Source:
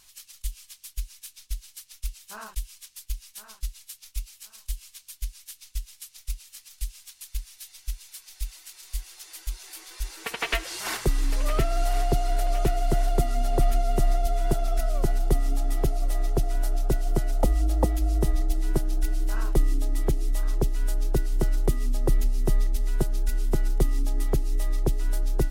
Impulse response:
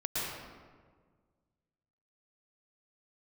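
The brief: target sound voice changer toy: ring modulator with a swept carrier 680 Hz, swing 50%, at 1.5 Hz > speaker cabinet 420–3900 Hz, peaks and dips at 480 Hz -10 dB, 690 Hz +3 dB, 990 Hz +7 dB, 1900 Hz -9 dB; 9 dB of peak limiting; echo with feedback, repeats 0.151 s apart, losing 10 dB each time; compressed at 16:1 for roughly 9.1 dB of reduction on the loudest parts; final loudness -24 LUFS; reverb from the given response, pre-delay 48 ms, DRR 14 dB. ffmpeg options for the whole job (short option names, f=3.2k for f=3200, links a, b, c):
-filter_complex "[0:a]acompressor=threshold=-24dB:ratio=16,alimiter=level_in=0.5dB:limit=-24dB:level=0:latency=1,volume=-0.5dB,aecho=1:1:151|302|453|604:0.316|0.101|0.0324|0.0104,asplit=2[a][b];[1:a]atrim=start_sample=2205,adelay=48[c];[b][c]afir=irnorm=-1:irlink=0,volume=-20dB[d];[a][d]amix=inputs=2:normalize=0,aeval=exprs='val(0)*sin(2*PI*680*n/s+680*0.5/1.5*sin(2*PI*1.5*n/s))':c=same,highpass=420,equalizer=f=480:t=q:w=4:g=-10,equalizer=f=690:t=q:w=4:g=3,equalizer=f=990:t=q:w=4:g=7,equalizer=f=1.9k:t=q:w=4:g=-9,lowpass=f=3.9k:w=0.5412,lowpass=f=3.9k:w=1.3066,volume=7dB"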